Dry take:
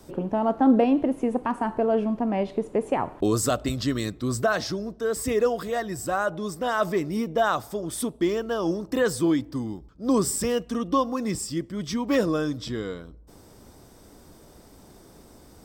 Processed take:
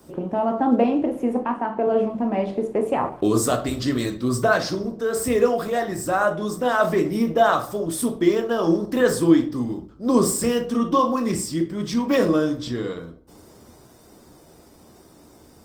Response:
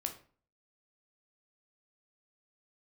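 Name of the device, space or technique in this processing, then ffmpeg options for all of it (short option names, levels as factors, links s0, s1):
far-field microphone of a smart speaker: -filter_complex "[0:a]asettb=1/sr,asplit=3[s0][s1][s2];[s0]atrim=end=1.384[s3];[s1]atrim=start=1.38:end=1.87,asetpts=PTS-STARTPTS,afade=t=in:d=0.004:c=qsin,afade=t=out:st=0.486:d=0.004:c=qsin,acrossover=split=160 4200:gain=0.2 1 0.112[s4][s5][s6];[s4][s5][s6]amix=inputs=3:normalize=0[s7];[s2]atrim=start=1.866[s8];[s3][s7]acrossfade=d=0.004:c1=hsin:c2=qsin[s9];[s9][s8]acrossfade=d=0.004:c1=qsin:c2=hsin[s10];[1:a]atrim=start_sample=2205[s11];[s10][s11]afir=irnorm=-1:irlink=0,highpass=f=100:p=1,dynaudnorm=f=370:g=17:m=1.5,volume=1.19" -ar 48000 -c:a libopus -b:a 20k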